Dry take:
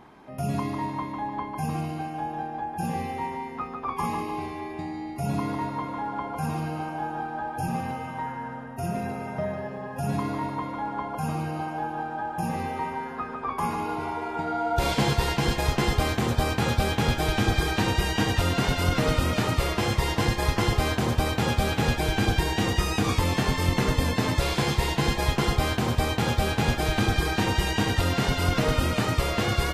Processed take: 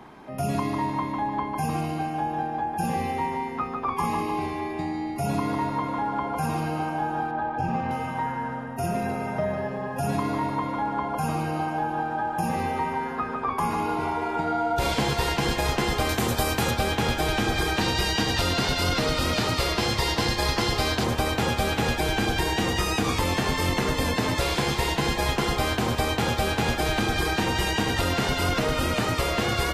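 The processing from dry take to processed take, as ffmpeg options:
-filter_complex "[0:a]asettb=1/sr,asplit=3[a][b][c];[a]atrim=end=7.314[d];[b]atrim=start=7.31:end=7.91,asetpts=PTS-STARTPTS,afade=t=in:d=0.004:c=qsin,afade=t=out:st=0.596:d=0.004:c=qsin,adynamicsmooth=sensitivity=1.5:basefreq=3.1k[e];[c]atrim=start=7.906[f];[d][e]acrossfade=d=0.004:c1=hsin:c2=qsin[g];[g][f]acrossfade=d=0.004:c1=qsin:c2=hsin,asettb=1/sr,asplit=3[h][i][j];[h]atrim=end=16.094[k];[i]atrim=start=16.09:end=16.71,asetpts=PTS-STARTPTS,afade=t=in:d=0.004:c=qsin,afade=t=out:st=0.616:d=0.004:c=qsin,highshelf=f=7.8k:g=12[l];[j]atrim=start=16.706[m];[k][l]acrossfade=d=0.004:c1=hsin:c2=qsin[n];[n][m]acrossfade=d=0.004:c1=qsin:c2=hsin,asettb=1/sr,asplit=3[o][p][q];[o]atrim=end=17.814[r];[p]atrim=start=17.81:end=21.04,asetpts=PTS-STARTPTS,afade=t=in:d=0.004:c=qsin,afade=t=out:st=3.226:d=0.004:c=qsin,equalizer=f=4.5k:w=1.7:g=7.5[s];[q]atrim=start=21.036[t];[r][s]acrossfade=d=0.004:c1=hsin:c2=qsin[u];[u][t]acrossfade=d=0.004:c1=qsin:c2=hsin,bandreject=f=50:t=h:w=6,bandreject=f=100:t=h:w=6,acrossover=split=84|210[v][w][x];[v]acompressor=threshold=-34dB:ratio=4[y];[w]acompressor=threshold=-40dB:ratio=4[z];[x]acompressor=threshold=-27dB:ratio=4[aa];[y][z][aa]amix=inputs=3:normalize=0,volume=4.5dB"

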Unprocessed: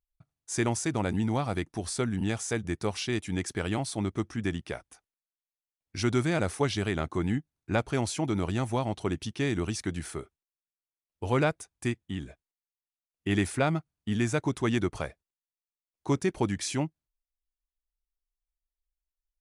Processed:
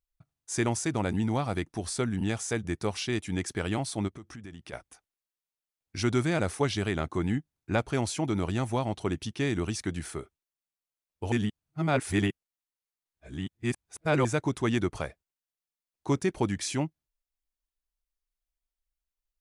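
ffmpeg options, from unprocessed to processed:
-filter_complex "[0:a]asplit=3[a][b][c];[a]afade=t=out:st=4.07:d=0.02[d];[b]acompressor=threshold=-41dB:ratio=6:attack=3.2:release=140:knee=1:detection=peak,afade=t=in:st=4.07:d=0.02,afade=t=out:st=4.72:d=0.02[e];[c]afade=t=in:st=4.72:d=0.02[f];[d][e][f]amix=inputs=3:normalize=0,asplit=3[g][h][i];[g]atrim=end=11.322[j];[h]atrim=start=11.318:end=14.252,asetpts=PTS-STARTPTS,areverse[k];[i]atrim=start=14.248[l];[j][k]acrossfade=d=0.004:c1=hsin:c2=hsin[m];[m][l]acrossfade=d=0.004:c1=hsin:c2=hsin"

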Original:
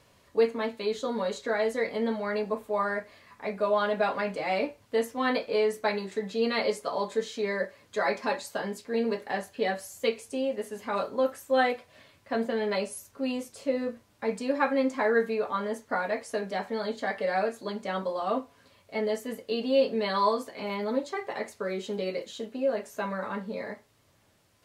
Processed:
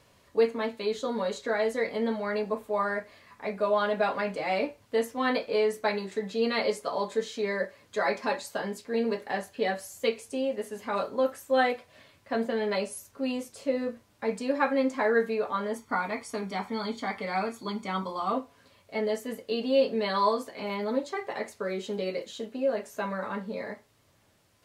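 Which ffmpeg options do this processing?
-filter_complex "[0:a]asettb=1/sr,asplit=3[a][b][c];[a]atrim=end=15.754[d];[b]atrim=start=15.75:end=18.33,asetpts=PTS-STARTPTS,afade=t=in:d=0.004:c=qsin,afade=t=out:st=2.576:d=0.004:c=qsin,aecho=1:1:0.9:0.64,atrim=end_sample=113778[e];[c]atrim=start=18.326[f];[d][e]acrossfade=d=0.004:c1=hsin:c2=qsin[g];[g][f]acrossfade=d=0.004:c1=qsin:c2=hsin"

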